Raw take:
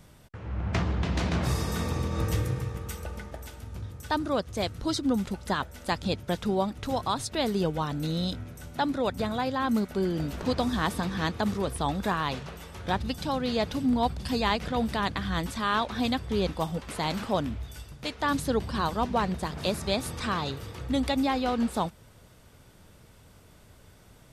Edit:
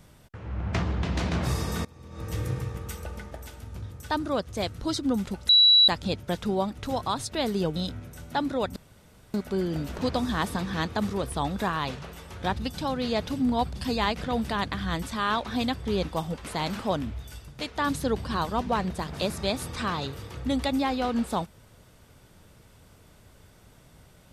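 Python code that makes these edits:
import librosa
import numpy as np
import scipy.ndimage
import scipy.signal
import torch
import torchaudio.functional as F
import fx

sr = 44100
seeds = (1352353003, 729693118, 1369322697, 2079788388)

y = fx.edit(x, sr, fx.fade_in_from(start_s=1.85, length_s=0.65, curve='qua', floor_db=-23.0),
    fx.bleep(start_s=5.49, length_s=0.39, hz=3920.0, db=-13.5),
    fx.cut(start_s=7.76, length_s=0.44),
    fx.room_tone_fill(start_s=9.2, length_s=0.58), tone=tone)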